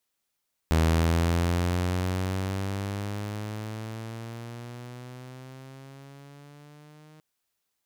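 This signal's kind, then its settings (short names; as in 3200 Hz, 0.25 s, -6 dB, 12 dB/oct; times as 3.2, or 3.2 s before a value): gliding synth tone saw, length 6.49 s, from 79.9 Hz, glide +11.5 st, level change -31 dB, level -16.5 dB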